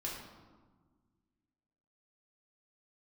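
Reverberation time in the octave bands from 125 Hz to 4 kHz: 2.2, 2.2, 1.5, 1.4, 1.0, 0.80 s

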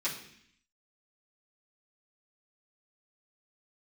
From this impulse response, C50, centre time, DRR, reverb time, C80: 7.5 dB, 26 ms, -10.5 dB, 0.65 s, 10.5 dB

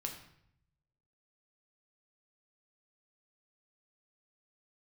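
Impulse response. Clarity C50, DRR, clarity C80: 7.5 dB, 1.5 dB, 10.5 dB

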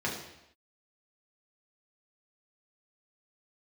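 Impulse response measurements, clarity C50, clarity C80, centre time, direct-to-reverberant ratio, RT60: 5.5 dB, 8.0 dB, 39 ms, -4.0 dB, not exponential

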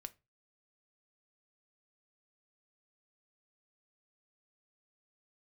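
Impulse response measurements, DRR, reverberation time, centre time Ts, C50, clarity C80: 11.0 dB, 0.25 s, 3 ms, 22.5 dB, 30.5 dB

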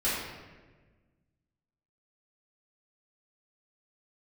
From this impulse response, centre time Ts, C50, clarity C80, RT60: 82 ms, -0.5 dB, 2.0 dB, 1.4 s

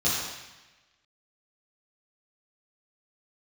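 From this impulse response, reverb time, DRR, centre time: 1.1 s, -9.5 dB, 82 ms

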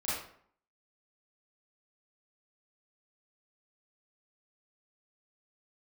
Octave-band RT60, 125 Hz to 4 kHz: 0.60, 0.65, 0.60, 0.60, 0.50, 0.40 s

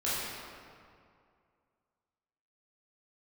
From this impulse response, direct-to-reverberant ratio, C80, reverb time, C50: -10.5 dB, -1.0 dB, 2.3 s, -3.0 dB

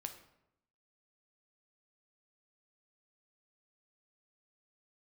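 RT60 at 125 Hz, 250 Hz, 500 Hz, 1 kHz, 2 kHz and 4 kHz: 0.95, 0.95, 0.85, 0.80, 0.70, 0.55 s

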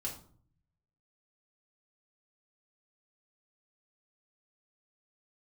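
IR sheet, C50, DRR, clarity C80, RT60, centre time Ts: 9.0 dB, -2.5 dB, 13.0 dB, 0.50 s, 20 ms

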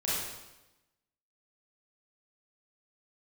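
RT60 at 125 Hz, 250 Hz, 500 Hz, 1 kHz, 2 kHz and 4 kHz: 1.1, 1.1, 1.0, 1.0, 0.95, 0.95 s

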